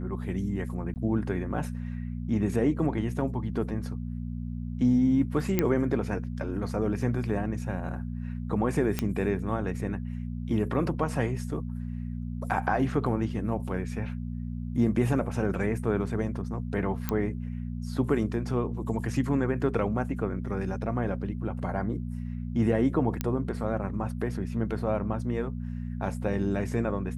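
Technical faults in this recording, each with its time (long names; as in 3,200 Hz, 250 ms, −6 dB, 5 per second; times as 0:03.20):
mains hum 60 Hz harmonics 4 −34 dBFS
0:00.94–0:00.96: drop-out 19 ms
0:05.59: click −10 dBFS
0:08.99: click −12 dBFS
0:17.09: click −13 dBFS
0:23.21: click −13 dBFS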